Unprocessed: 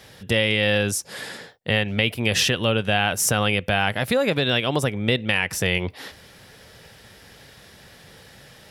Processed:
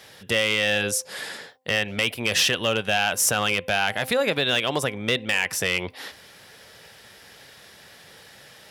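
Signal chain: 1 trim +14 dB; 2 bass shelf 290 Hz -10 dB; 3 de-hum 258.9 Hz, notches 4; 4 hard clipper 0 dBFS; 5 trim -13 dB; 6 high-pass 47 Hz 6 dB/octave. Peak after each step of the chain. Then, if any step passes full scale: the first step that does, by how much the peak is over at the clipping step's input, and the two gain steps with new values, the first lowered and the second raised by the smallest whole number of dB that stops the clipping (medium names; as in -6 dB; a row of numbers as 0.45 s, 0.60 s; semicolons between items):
+10.0 dBFS, +9.0 dBFS, +9.0 dBFS, 0.0 dBFS, -13.0 dBFS, -12.0 dBFS; step 1, 9.0 dB; step 1 +5 dB, step 5 -4 dB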